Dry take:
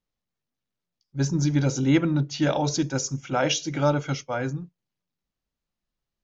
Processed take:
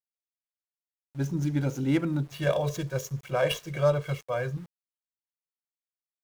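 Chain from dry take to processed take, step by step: median filter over 9 samples; 2.32–4.57 comb 1.8 ms, depth 99%; sample gate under -44 dBFS; gain -5 dB

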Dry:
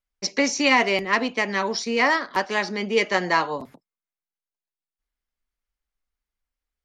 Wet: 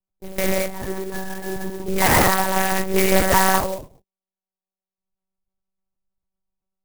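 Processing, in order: Wiener smoothing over 25 samples; 0.57–1.79 octave resonator G#, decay 0.12 s; non-linear reverb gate 0.25 s flat, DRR -7.5 dB; monotone LPC vocoder at 8 kHz 190 Hz; clock jitter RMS 0.07 ms; gain -1 dB

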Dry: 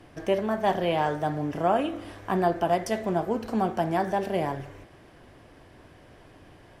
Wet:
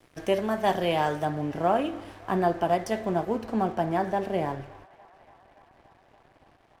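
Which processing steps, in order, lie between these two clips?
high shelf 3900 Hz +6.5 dB, from 1.25 s -3 dB, from 3.45 s -8 dB; crossover distortion -50.5 dBFS; band-limited delay 0.286 s, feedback 80%, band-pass 1400 Hz, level -23 dB

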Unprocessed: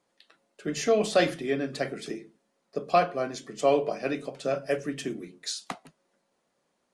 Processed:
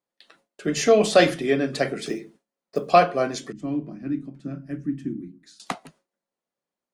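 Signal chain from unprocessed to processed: 2.04–2.88 block floating point 7-bit; gate with hold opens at -46 dBFS; 3.52–5.6 EQ curve 320 Hz 0 dB, 450 Hz -27 dB, 1700 Hz -17 dB, 2800 Hz -25 dB; gain +6.5 dB

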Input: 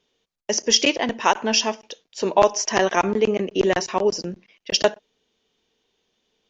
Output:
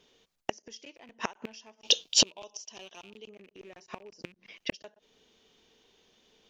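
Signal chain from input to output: rattling part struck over -36 dBFS, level -17 dBFS; in parallel at 0 dB: compressor 6:1, threshold -29 dBFS, peak gain reduction 18 dB; on the sum: flipped gate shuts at -14 dBFS, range -32 dB; 1.82–3.29 resonant high shelf 2400 Hz +7 dB, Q 3

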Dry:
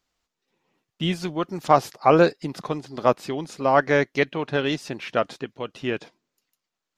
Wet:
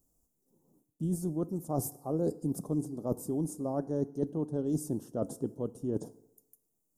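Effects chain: EQ curve 270 Hz 0 dB, 970 Hz -14 dB, 1500 Hz -16 dB, 2400 Hz -6 dB, 4100 Hz -22 dB, 9300 Hz +6 dB; reverse; compressor 6:1, threshold -37 dBFS, peak gain reduction 19 dB; reverse; Butterworth band-stop 2300 Hz, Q 0.53; FDN reverb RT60 0.96 s, low-frequency decay 0.85×, high-frequency decay 0.75×, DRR 16 dB; gain +7.5 dB

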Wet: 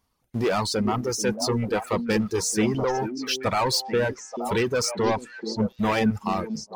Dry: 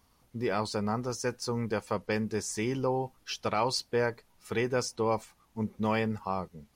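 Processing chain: sample leveller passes 3; 4.95–5.7 LPF 8200 Hz 12 dB/oct; on a send: delay with a stepping band-pass 0.438 s, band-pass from 270 Hz, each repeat 1.4 oct, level -2 dB; on the sum: reverb removal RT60 1.6 s

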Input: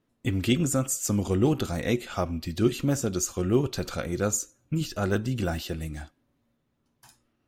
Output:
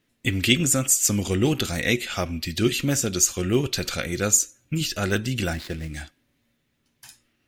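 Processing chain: 5.53–5.94 median filter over 15 samples; resonant high shelf 1500 Hz +8 dB, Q 1.5; gain +1.5 dB

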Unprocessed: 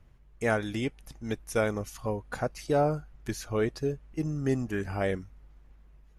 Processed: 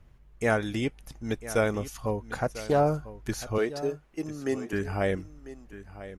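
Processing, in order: 3.58–4.73 HPF 310 Hz 12 dB/oct; echo 0.997 s -15 dB; 2.29–2.8 Doppler distortion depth 0.19 ms; gain +2 dB

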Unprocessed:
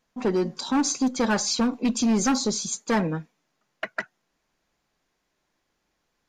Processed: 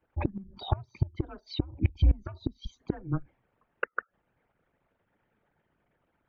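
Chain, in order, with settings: formant sharpening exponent 2; mistuned SSB -170 Hz 210–3200 Hz; flipped gate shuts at -17 dBFS, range -25 dB; gain +4 dB

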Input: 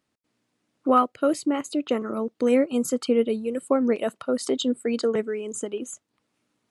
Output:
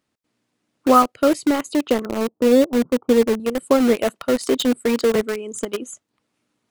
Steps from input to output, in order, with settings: 2.06–3.4 steep low-pass 1000 Hz 36 dB/oct; in parallel at -4.5 dB: bit-crush 4-bit; on the sum: gain +1.5 dB

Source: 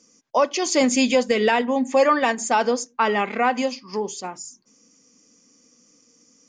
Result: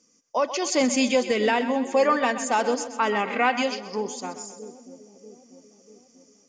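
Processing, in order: split-band echo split 490 Hz, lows 0.64 s, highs 0.129 s, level -12 dB; AGC gain up to 3.5 dB; 3.29–3.85 dynamic EQ 2900 Hz, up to +7 dB, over -35 dBFS, Q 0.85; gain -6 dB

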